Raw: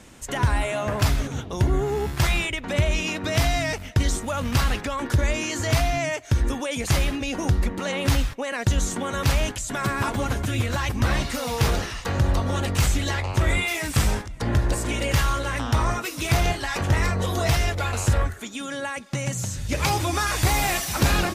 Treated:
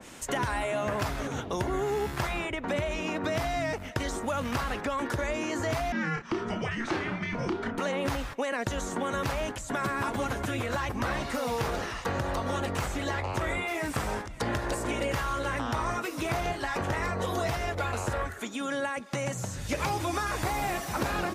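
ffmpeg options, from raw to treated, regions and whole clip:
-filter_complex "[0:a]asettb=1/sr,asplit=3[s0][s1][s2];[s0]atrim=end=5.924[s3];[s1]atrim=start=5.92:end=7.78,asetpts=PTS-STARTPTS,afade=t=in:d=0.004:c=qsin,afade=t=out:st=1.856:d=0.004:c=qsin,highpass=160,lowpass=4000,afreqshift=-460,asplit=2[s4][s5];[s5]adelay=31,volume=0.501[s6];[s4][s6]amix=inputs=2:normalize=0,atrim=end_sample=82026[s7];[s2]atrim=start=7.776[s8];[s3][s7]acrossfade=d=0.004:c1=hsin:c2=qsin[s9];[s9][s8]acrossfade=d=0.004:c1=qsin:c2=hsin,lowshelf=f=170:g=-11.5,acrossover=split=390|1600[s10][s11][s12];[s10]acompressor=threshold=0.0158:ratio=4[s13];[s11]acompressor=threshold=0.0178:ratio=4[s14];[s12]acompressor=threshold=0.0112:ratio=4[s15];[s13][s14][s15]amix=inputs=3:normalize=0,adynamicequalizer=threshold=0.00355:dfrequency=2200:dqfactor=0.7:tfrequency=2200:tqfactor=0.7:attack=5:release=100:ratio=0.375:range=3:mode=cutabove:tftype=highshelf,volume=1.5"

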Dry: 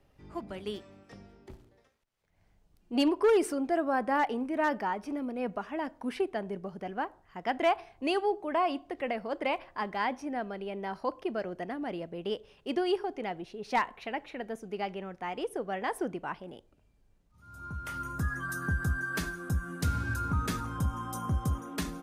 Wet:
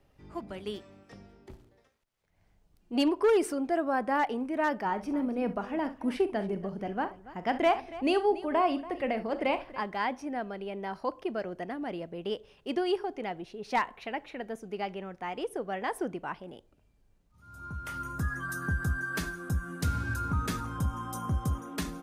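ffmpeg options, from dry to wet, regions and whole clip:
-filter_complex "[0:a]asettb=1/sr,asplit=3[s0][s1][s2];[s0]atrim=end=4.854[s3];[s1]atrim=start=4.85:end=9.8,asetpts=PTS-STARTPTS,afade=t=in:d=0.004:c=qsin,afade=t=out:st=4.946:d=0.004:c=qsin,lowshelf=f=360:g=6.5,aecho=1:1:41|66|284:0.211|0.168|0.141,atrim=end_sample=218295[s4];[s2]atrim=start=9.796[s5];[s3][s4]acrossfade=d=0.004:c1=hsin:c2=qsin[s6];[s6][s5]acrossfade=d=0.004:c1=qsin:c2=hsin"

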